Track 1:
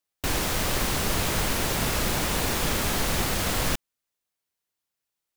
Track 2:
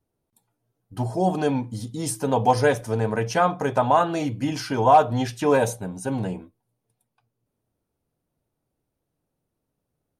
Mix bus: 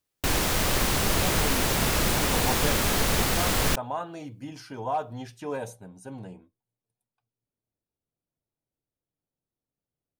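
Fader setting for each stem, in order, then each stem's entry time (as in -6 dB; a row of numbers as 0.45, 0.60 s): +1.5, -13.5 dB; 0.00, 0.00 s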